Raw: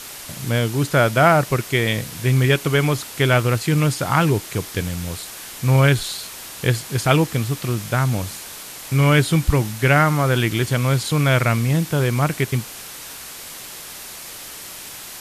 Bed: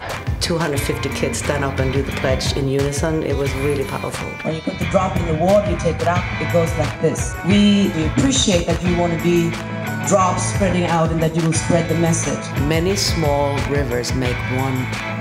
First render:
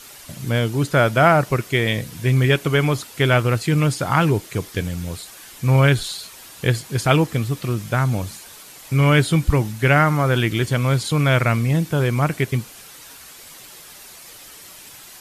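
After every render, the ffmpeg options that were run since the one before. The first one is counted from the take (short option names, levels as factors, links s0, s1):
-af "afftdn=nr=8:nf=-36"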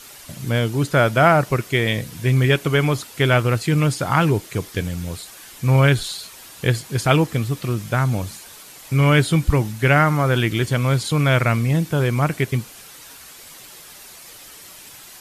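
-af anull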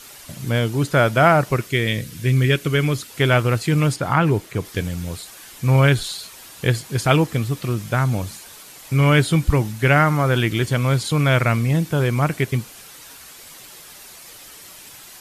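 -filter_complex "[0:a]asettb=1/sr,asplit=3[s0][s1][s2];[s0]atrim=end=1.664[s3];[s1]atrim=start=1.66:end=3.1,asetpts=PTS-STARTPTS,afade=t=in:d=0.004:c=qsin,afade=t=out:st=1.436:d=0.004:c=qsin,equalizer=f=830:t=o:w=0.94:g=-10[s4];[s2]atrim=start=3.096[s5];[s3][s4]acrossfade=d=0.004:c1=hsin:c2=qsin[s6];[s6][s5]acrossfade=d=0.004:c1=qsin:c2=hsin,asettb=1/sr,asplit=3[s7][s8][s9];[s7]atrim=end=3.964[s10];[s8]atrim=start=3.96:end=4.65,asetpts=PTS-STARTPTS,afade=t=in:d=0.004:c=qsin,afade=t=out:st=0.686:d=0.004:c=qsin,acrossover=split=2900[s11][s12];[s12]acompressor=threshold=0.00794:ratio=4:attack=1:release=60[s13];[s11][s13]amix=inputs=2:normalize=0[s14];[s9]atrim=start=4.646[s15];[s10][s14]acrossfade=d=0.004:c1=hsin:c2=qsin[s16];[s16][s15]acrossfade=d=0.004:c1=qsin:c2=hsin"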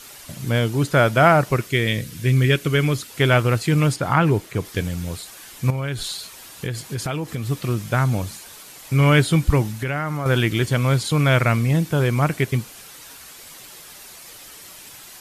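-filter_complex "[0:a]asettb=1/sr,asplit=3[s0][s1][s2];[s0]atrim=end=5.704[s3];[s1]atrim=start=5.7:end=7.48,asetpts=PTS-STARTPTS,afade=t=in:d=0.004:c=qsin,afade=t=out:st=1.776:d=0.004:c=qsin,acompressor=threshold=0.0794:ratio=6:attack=3.2:release=140:knee=1:detection=peak[s4];[s2]atrim=start=7.476[s5];[s3][s4]acrossfade=d=0.004:c1=hsin:c2=qsin[s6];[s6][s5]acrossfade=d=0.004:c1=qsin:c2=hsin,asettb=1/sr,asplit=3[s7][s8][s9];[s7]atrim=end=9.664[s10];[s8]atrim=start=9.66:end=10.26,asetpts=PTS-STARTPTS,afade=t=in:d=0.004:c=qsin,afade=t=out:st=0.596:d=0.004:c=qsin,acompressor=threshold=0.0891:ratio=6:attack=3.2:release=140:knee=1:detection=peak[s11];[s9]atrim=start=10.256[s12];[s10][s11]acrossfade=d=0.004:c1=hsin:c2=qsin[s13];[s13][s12]acrossfade=d=0.004:c1=qsin:c2=hsin"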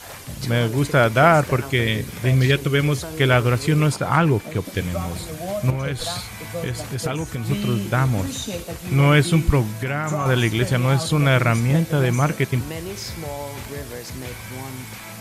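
-filter_complex "[1:a]volume=0.211[s0];[0:a][s0]amix=inputs=2:normalize=0"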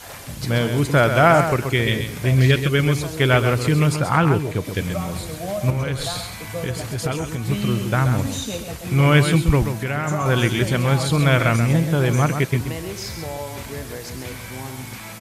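-af "aecho=1:1:131:0.398"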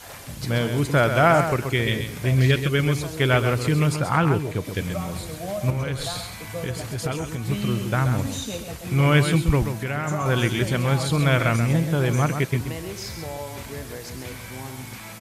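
-af "volume=0.708"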